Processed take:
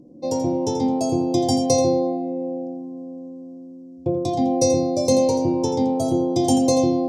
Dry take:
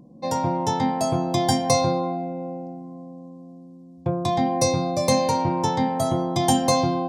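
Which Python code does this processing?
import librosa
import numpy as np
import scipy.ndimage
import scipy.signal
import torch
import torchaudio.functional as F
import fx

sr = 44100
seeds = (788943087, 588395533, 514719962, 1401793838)

p1 = fx.curve_eq(x, sr, hz=(100.0, 200.0, 290.0, 530.0, 1700.0, 2500.0, 3700.0, 5600.0, 13000.0), db=(0, -6, 8, 3, -22, -7, -6, 2, -8))
y = p1 + fx.echo_single(p1, sr, ms=84, db=-9.5, dry=0)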